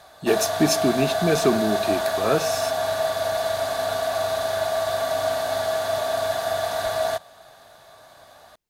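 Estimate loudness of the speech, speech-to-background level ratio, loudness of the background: −24.0 LKFS, 0.5 dB, −24.5 LKFS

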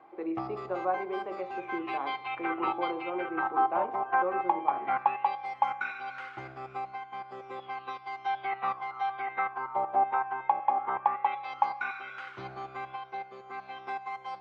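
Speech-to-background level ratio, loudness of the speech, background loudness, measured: −3.5 dB, −36.5 LKFS, −33.0 LKFS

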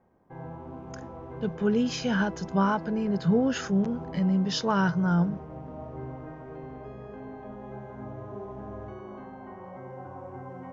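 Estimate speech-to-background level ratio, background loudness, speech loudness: 15.0 dB, −41.5 LKFS, −26.5 LKFS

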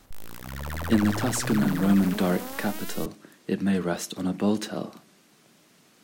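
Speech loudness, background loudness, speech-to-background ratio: −26.5 LKFS, −34.0 LKFS, 7.5 dB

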